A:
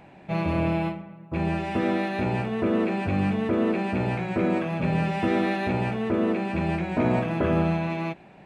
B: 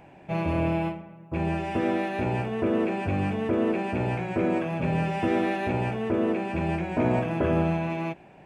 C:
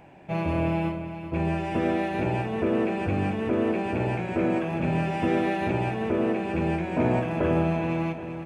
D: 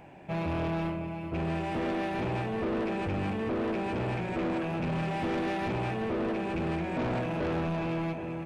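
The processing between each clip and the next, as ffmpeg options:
-af "equalizer=f=200:t=o:w=0.33:g=-6,equalizer=f=1250:t=o:w=0.33:g=-4,equalizer=f=2000:t=o:w=0.33:g=-3,equalizer=f=4000:t=o:w=0.33:g=-9"
-af "aecho=1:1:389|778|1167|1556|1945|2334:0.282|0.161|0.0916|0.0522|0.0298|0.017"
-af "asoftclip=type=tanh:threshold=0.0422"

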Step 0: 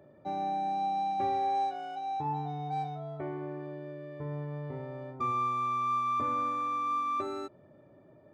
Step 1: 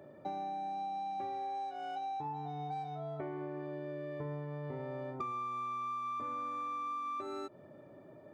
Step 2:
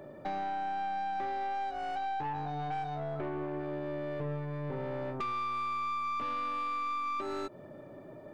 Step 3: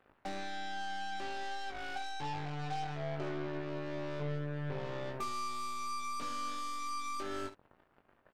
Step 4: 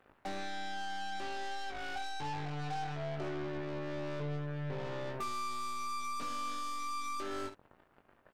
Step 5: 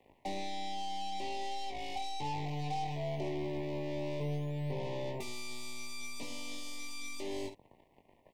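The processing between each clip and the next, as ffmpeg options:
-af "highpass=f=150:p=1,acompressor=threshold=0.00891:ratio=10,volume=1.58"
-af "aeval=exprs='(tanh(79.4*val(0)+0.4)-tanh(0.4))/79.4':c=same,volume=2.37"
-af "aeval=exprs='0.0422*(cos(1*acos(clip(val(0)/0.0422,-1,1)))-cos(1*PI/2))+0.00211*(cos(3*acos(clip(val(0)/0.0422,-1,1)))-cos(3*PI/2))+0.00596*(cos(7*acos(clip(val(0)/0.0422,-1,1)))-cos(7*PI/2))':c=same,aecho=1:1:21|70:0.562|0.237,volume=0.708"
-af "asoftclip=type=tanh:threshold=0.0211,volume=1.33"
-filter_complex "[0:a]asuperstop=centerf=1400:order=8:qfactor=1.5,acrossover=split=130|6500[s0][s1][s2];[s0]acrusher=samples=12:mix=1:aa=0.000001:lfo=1:lforange=12:lforate=0.33[s3];[s3][s1][s2]amix=inputs=3:normalize=0,volume=1.26"

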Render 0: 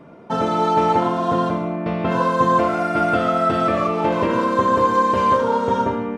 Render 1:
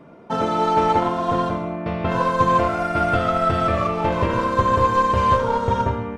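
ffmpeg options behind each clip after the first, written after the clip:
-af "aeval=exprs='0.631*(cos(1*acos(clip(val(0)/0.631,-1,1)))-cos(1*PI/2))+0.0158*(cos(7*acos(clip(val(0)/0.631,-1,1)))-cos(7*PI/2))':c=same,asubboost=boost=10:cutoff=83"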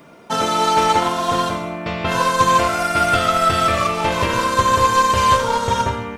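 -af "crystalizer=i=9:c=0,volume=0.841"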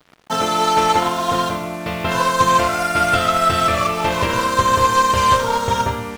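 -af "acrusher=bits=5:mix=0:aa=0.5"

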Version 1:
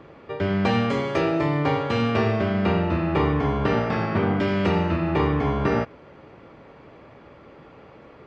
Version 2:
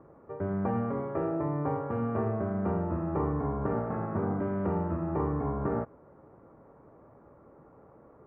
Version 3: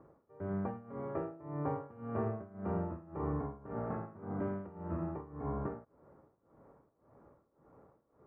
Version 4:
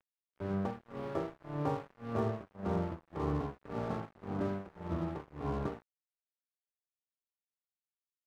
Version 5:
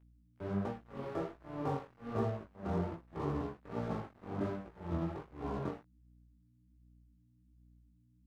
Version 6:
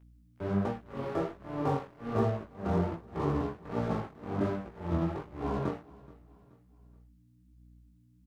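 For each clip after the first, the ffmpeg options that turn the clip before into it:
-af "lowpass=f=1300:w=0.5412,lowpass=f=1300:w=1.3066,volume=0.398"
-af "tremolo=f=1.8:d=0.89,volume=0.596"
-af "aeval=exprs='sgn(val(0))*max(abs(val(0))-0.00355,0)':c=same,volume=1.5"
-af "aeval=exprs='val(0)+0.000794*(sin(2*PI*60*n/s)+sin(2*PI*2*60*n/s)/2+sin(2*PI*3*60*n/s)/3+sin(2*PI*4*60*n/s)/4+sin(2*PI*5*60*n/s)/5)':c=same,flanger=delay=16.5:depth=7.8:speed=1.3,volume=1.12"
-af "aecho=1:1:427|854|1281:0.0794|0.0334|0.014,volume=2"

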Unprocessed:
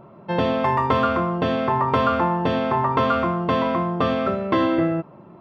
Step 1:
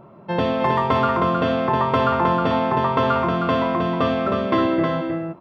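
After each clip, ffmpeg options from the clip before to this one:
-af "aecho=1:1:314:0.562"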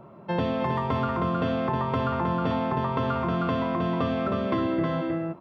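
-filter_complex "[0:a]acrossover=split=250[s0][s1];[s1]acompressor=threshold=0.0631:ratio=6[s2];[s0][s2]amix=inputs=2:normalize=0,volume=0.794"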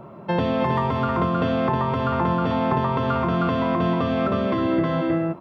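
-af "alimiter=limit=0.119:level=0:latency=1:release=282,volume=2.11"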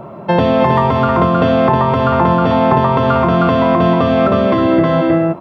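-af "equalizer=f=680:w=1.9:g=4,volume=2.66"

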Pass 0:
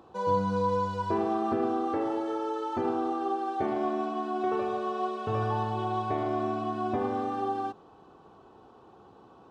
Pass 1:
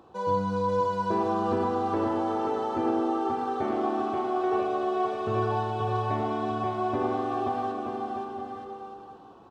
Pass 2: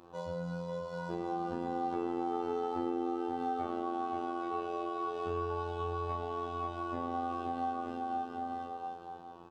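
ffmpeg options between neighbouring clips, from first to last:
-af "aecho=1:1:530|927.5|1226|1449|1617:0.631|0.398|0.251|0.158|0.1"
-filter_complex "[0:a]asplit=2[s0][s1];[s1]adelay=36,volume=0.794[s2];[s0][s2]amix=inputs=2:normalize=0,acompressor=threshold=0.0316:ratio=4,afftfilt=real='hypot(re,im)*cos(PI*b)':imag='0':win_size=2048:overlap=0.75"

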